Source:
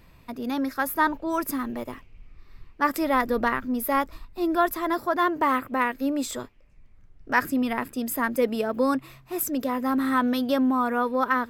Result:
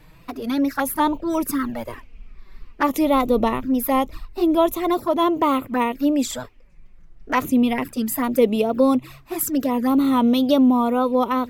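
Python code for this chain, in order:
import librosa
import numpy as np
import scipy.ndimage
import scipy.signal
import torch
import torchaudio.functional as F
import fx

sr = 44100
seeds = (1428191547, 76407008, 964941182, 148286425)

y = fx.env_flanger(x, sr, rest_ms=7.0, full_db=-22.0)
y = fx.wow_flutter(y, sr, seeds[0], rate_hz=2.1, depth_cents=76.0)
y = y * librosa.db_to_amplitude(7.5)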